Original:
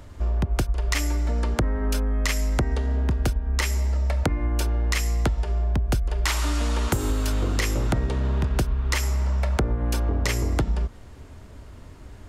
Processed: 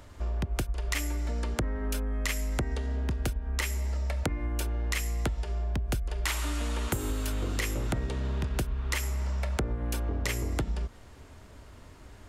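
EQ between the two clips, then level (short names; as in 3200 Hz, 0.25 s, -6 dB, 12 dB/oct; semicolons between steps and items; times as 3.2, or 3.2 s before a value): low shelf 430 Hz -6 dB; dynamic EQ 1000 Hz, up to -5 dB, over -43 dBFS, Q 0.71; dynamic EQ 5200 Hz, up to -7 dB, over -47 dBFS, Q 1.3; -1.5 dB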